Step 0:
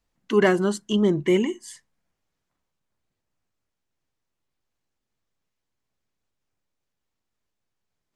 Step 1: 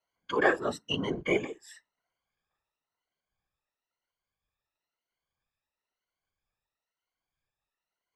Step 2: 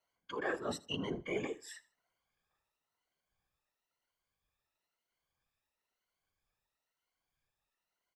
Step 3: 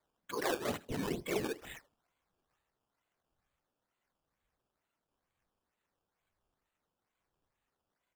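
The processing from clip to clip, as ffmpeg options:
-filter_complex "[0:a]afftfilt=real='re*pow(10,21/40*sin(2*PI*(1.9*log(max(b,1)*sr/1024/100)/log(2)-(1)*(pts-256)/sr)))':imag='im*pow(10,21/40*sin(2*PI*(1.9*log(max(b,1)*sr/1024/100)/log(2)-(1)*(pts-256)/sr)))':win_size=1024:overlap=0.75,afftfilt=real='hypot(re,im)*cos(2*PI*random(0))':imag='hypot(re,im)*sin(2*PI*random(1))':win_size=512:overlap=0.75,acrossover=split=520 4900:gain=0.224 1 0.224[s0][s1][s2];[s0][s1][s2]amix=inputs=3:normalize=0"
-af "areverse,acompressor=threshold=0.0141:ratio=4,areverse,aecho=1:1:79|158:0.0891|0.0267,volume=1.12"
-af "acrusher=samples=15:mix=1:aa=0.000001:lfo=1:lforange=15:lforate=2.2,volume=1.26"

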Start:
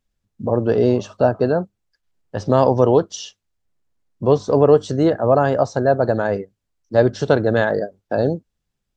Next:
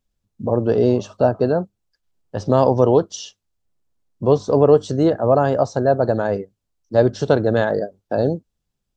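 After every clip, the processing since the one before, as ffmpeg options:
-af "equalizer=f=1900:w=1.3:g=-4.5"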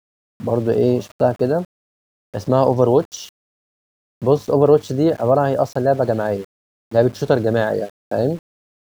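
-af "aeval=exprs='val(0)*gte(abs(val(0)),0.0141)':c=same"

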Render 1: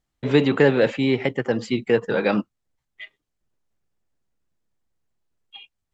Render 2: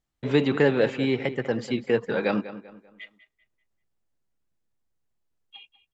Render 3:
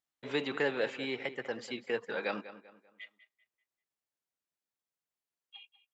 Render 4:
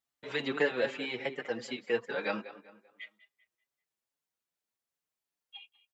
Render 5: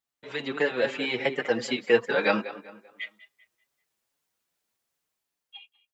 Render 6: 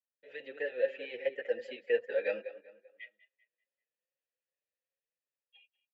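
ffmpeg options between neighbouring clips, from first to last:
-filter_complex "[0:a]asplit=2[s0][s1];[s1]adelay=195,lowpass=f=3800:p=1,volume=0.2,asplit=2[s2][s3];[s3]adelay=195,lowpass=f=3800:p=1,volume=0.37,asplit=2[s4][s5];[s5]adelay=195,lowpass=f=3800:p=1,volume=0.37,asplit=2[s6][s7];[s7]adelay=195,lowpass=f=3800:p=1,volume=0.37[s8];[s0][s2][s4][s6][s8]amix=inputs=5:normalize=0,volume=0.631"
-af "highpass=f=810:p=1,volume=0.562"
-filter_complex "[0:a]asplit=2[s0][s1];[s1]adelay=5.7,afreqshift=2.5[s2];[s0][s2]amix=inputs=2:normalize=1,volume=1.68"
-af "dynaudnorm=f=270:g=7:m=3.16"
-filter_complex "[0:a]asplit=3[s0][s1][s2];[s0]bandpass=f=530:t=q:w=8,volume=1[s3];[s1]bandpass=f=1840:t=q:w=8,volume=0.501[s4];[s2]bandpass=f=2480:t=q:w=8,volume=0.355[s5];[s3][s4][s5]amix=inputs=3:normalize=0,volume=0.794"

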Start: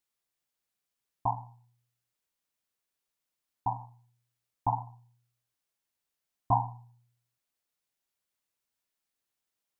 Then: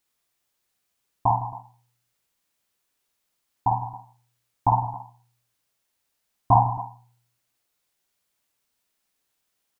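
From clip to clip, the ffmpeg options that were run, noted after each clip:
-af "aecho=1:1:52|158|195|273:0.631|0.2|0.119|0.133,volume=2.51"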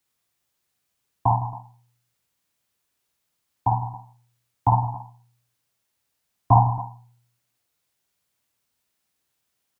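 -filter_complex "[0:a]highpass=61,acrossover=split=170|430[s0][s1][s2];[s0]acontrast=64[s3];[s3][s1][s2]amix=inputs=3:normalize=0"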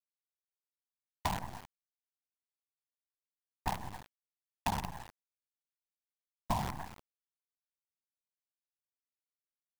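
-af "afftfilt=real='hypot(re,im)*cos(2*PI*random(0))':imag='hypot(re,im)*sin(2*PI*random(1))':win_size=512:overlap=0.75,acrusher=bits=5:dc=4:mix=0:aa=0.000001,acompressor=threshold=0.0316:ratio=10"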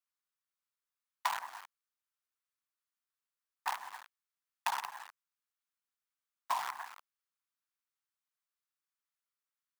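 -af "highpass=f=1200:t=q:w=2.3"

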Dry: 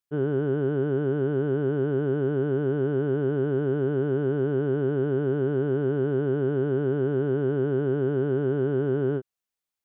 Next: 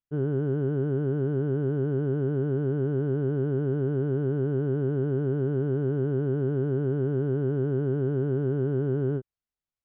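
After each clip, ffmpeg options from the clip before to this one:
-af "aemphasis=mode=reproduction:type=bsi,volume=0.501"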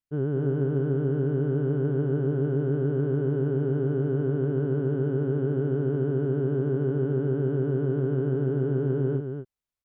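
-af "aecho=1:1:231:0.473"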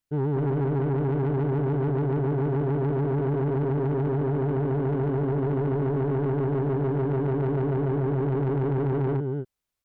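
-af "asoftclip=type=tanh:threshold=0.0398,volume=2"

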